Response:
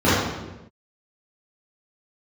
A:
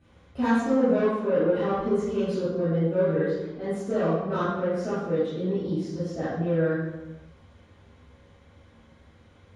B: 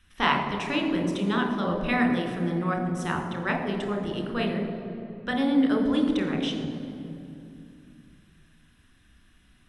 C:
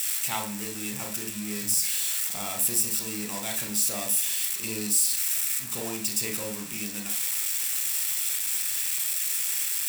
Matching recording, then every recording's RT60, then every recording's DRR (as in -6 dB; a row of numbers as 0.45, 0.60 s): A; not exponential, 2.7 s, not exponential; -13.5, 2.5, 2.5 dB